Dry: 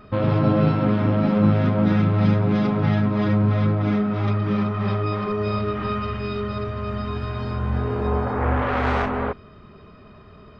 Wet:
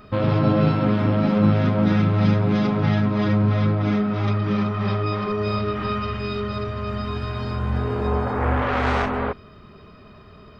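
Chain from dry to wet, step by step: high shelf 4100 Hz +8 dB

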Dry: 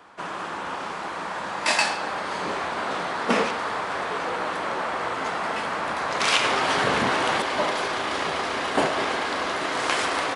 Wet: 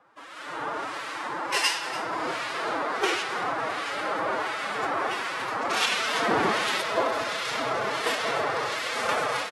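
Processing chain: formant-preserving pitch shift +7.5 st; harmonic tremolo 1.3 Hz, depth 70%, crossover 1500 Hz; AGC gain up to 11.5 dB; speed mistake 44.1 kHz file played as 48 kHz; on a send: echo 0.29 s -15.5 dB; on the sum: gain -8.5 dB

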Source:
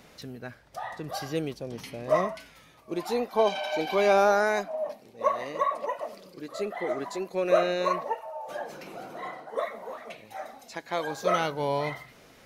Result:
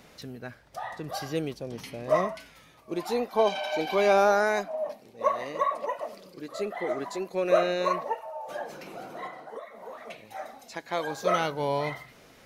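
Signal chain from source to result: 9.26–10.01 compressor 16:1, threshold -37 dBFS, peak gain reduction 14 dB

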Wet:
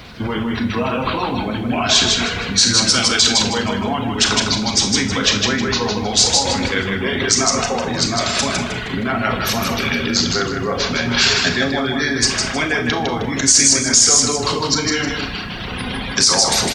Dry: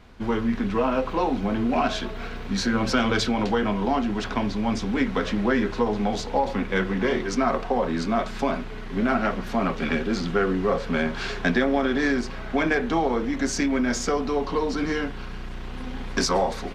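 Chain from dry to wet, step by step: octaver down 1 oct, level -4 dB; in parallel at +3 dB: negative-ratio compressor -29 dBFS, ratio -0.5; on the sum: high shelf 2100 Hz +6.5 dB; spectral gate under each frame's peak -30 dB strong; pre-emphasis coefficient 0.8; on a send: feedback echo 0.156 s, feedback 34%, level -4 dB; on the sum: reverb removal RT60 0.68 s; added noise brown -46 dBFS; HPF 58 Hz; Schroeder reverb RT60 0.37 s, combs from 26 ms, DRR 6.5 dB; maximiser +13 dB; gain -1 dB

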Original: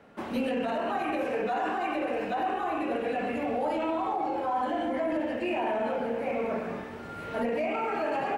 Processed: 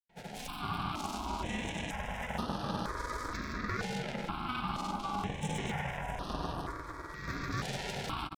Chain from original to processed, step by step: tracing distortion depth 0.37 ms; HPF 130 Hz; notch 480 Hz, Q 15; in parallel at -2 dB: limiter -25.5 dBFS, peak gain reduction 7.5 dB; on the sum: notch comb 260 Hz; echo with dull and thin repeats by turns 0.3 s, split 1000 Hz, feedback 80%, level -8.5 dB; added harmonics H 4 -10 dB, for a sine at -15.5 dBFS; grains, pitch spread up and down by 0 st; ring modulator 510 Hz; step phaser 2.1 Hz 310–7300 Hz; gain -4 dB

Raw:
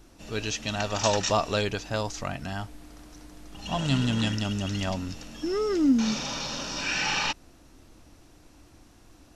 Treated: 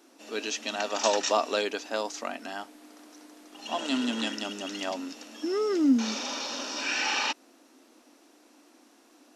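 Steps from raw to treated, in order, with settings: elliptic high-pass 240 Hz, stop band 40 dB

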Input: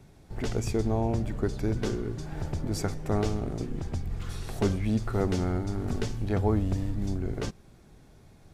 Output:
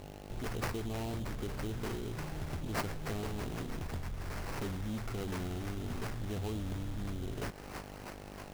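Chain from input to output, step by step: on a send: thin delay 0.318 s, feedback 77%, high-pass 3600 Hz, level -9 dB; on the sum: buzz 50 Hz, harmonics 17, -48 dBFS -2 dB/oct; in parallel at +2 dB: limiter -20 dBFS, peak gain reduction 7 dB; on the sum: soft clip -17.5 dBFS, distortion -15 dB; compressor 2.5:1, threshold -30 dBFS, peak gain reduction 6.5 dB; resonant high shelf 4800 Hz +11.5 dB, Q 1.5; sample-rate reducer 3500 Hz, jitter 20%; gain -8 dB

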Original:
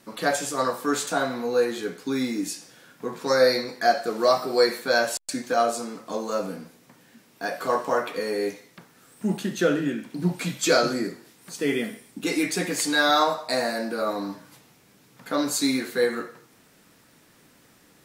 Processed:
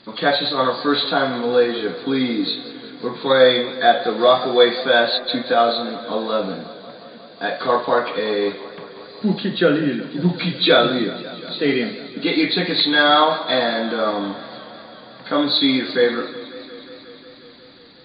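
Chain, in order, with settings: nonlinear frequency compression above 3200 Hz 4:1; warbling echo 0.18 s, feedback 80%, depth 89 cents, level -18 dB; gain +6 dB

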